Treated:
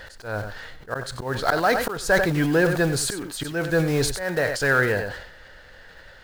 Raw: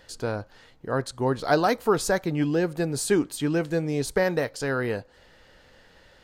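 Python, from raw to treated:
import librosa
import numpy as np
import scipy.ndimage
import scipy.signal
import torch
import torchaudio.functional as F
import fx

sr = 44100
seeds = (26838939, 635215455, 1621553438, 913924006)

p1 = fx.block_float(x, sr, bits=5)
p2 = fx.auto_swell(p1, sr, attack_ms=370.0)
p3 = fx.low_shelf(p2, sr, hz=75.0, db=8.5)
p4 = np.clip(p3, -10.0 ** (-24.0 / 20.0), 10.0 ** (-24.0 / 20.0))
p5 = p3 + (p4 * librosa.db_to_amplitude(-5.0))
p6 = fx.rider(p5, sr, range_db=4, speed_s=2.0)
p7 = fx.graphic_eq_15(p6, sr, hz=(250, 630, 1600, 4000), db=(-4, 4, 10, 3))
p8 = p7 + 10.0 ** (-13.5 / 20.0) * np.pad(p7, (int(93 * sr / 1000.0), 0))[:len(p7)]
y = fx.sustainer(p8, sr, db_per_s=65.0)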